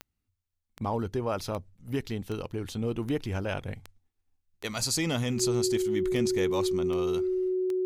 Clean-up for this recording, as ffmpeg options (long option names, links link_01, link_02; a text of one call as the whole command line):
ffmpeg -i in.wav -af "adeclick=threshold=4,bandreject=frequency=370:width=30" out.wav